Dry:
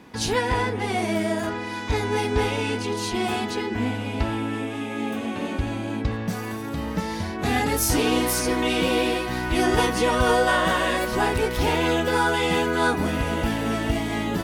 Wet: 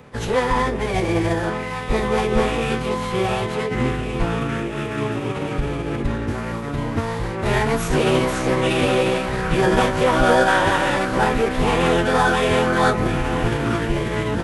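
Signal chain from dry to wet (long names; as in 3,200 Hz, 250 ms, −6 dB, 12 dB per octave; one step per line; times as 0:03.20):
running median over 9 samples
phase-vocoder pitch shift with formants kept −11.5 semitones
level +5 dB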